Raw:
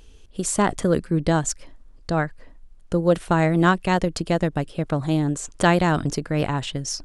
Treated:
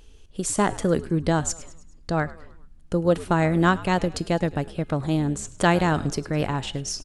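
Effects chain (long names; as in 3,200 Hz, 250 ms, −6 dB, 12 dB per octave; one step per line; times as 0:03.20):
tuned comb filter 420 Hz, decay 0.46 s, mix 50%
on a send: echo with shifted repeats 104 ms, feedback 51%, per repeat −82 Hz, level −18.5 dB
on the sum: level +4 dB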